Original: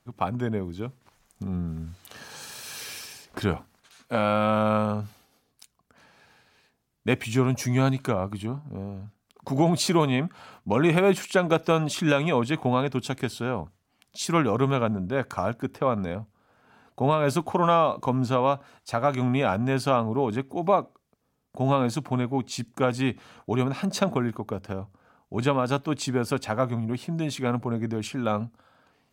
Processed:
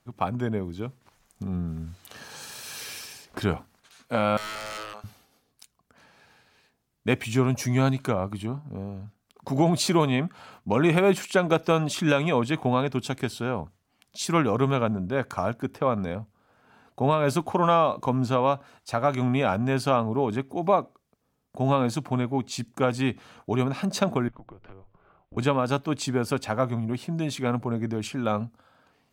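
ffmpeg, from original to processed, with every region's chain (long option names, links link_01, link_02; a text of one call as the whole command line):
ffmpeg -i in.wav -filter_complex "[0:a]asettb=1/sr,asplit=3[link_01][link_02][link_03];[link_01]atrim=end=4.374[link_04];[link_02]atrim=start=4.37:end=5.04,asetpts=PTS-STARTPTS,afade=type=in:duration=0.004:curve=qsin,afade=type=out:start_time=0.666:duration=0.004:curve=qsin,highpass=860,aeval=exprs='0.0316*(abs(mod(val(0)/0.0316+3,4)-2)-1)':channel_layout=same[link_05];[link_03]atrim=start=5.036[link_06];[link_04][link_05]acrossfade=duration=0.004:curve1=hsin:curve2=qsin[link_07];[link_07][link_06]acrossfade=duration=0.004:curve1=qsin:curve2=hsin,asettb=1/sr,asplit=3[link_08][link_09][link_10];[link_08]atrim=end=24.284[link_11];[link_09]atrim=start=24.28:end=25.37,asetpts=PTS-STARTPTS,afade=type=in:duration=0.004:curve=qsin,afade=type=out:start_time=1.086:duration=0.004:curve=qsin,lowpass=frequency=3300:width=0.5412,lowpass=frequency=3300:width=1.3066,acompressor=threshold=-42dB:ratio=6:attack=3.2:release=140:knee=1:detection=peak,afreqshift=-94[link_12];[link_10]atrim=start=25.366[link_13];[link_11][link_12]acrossfade=duration=0.004:curve1=hsin:curve2=qsin[link_14];[link_14][link_13]acrossfade=duration=0.004:curve1=qsin:curve2=hsin" out.wav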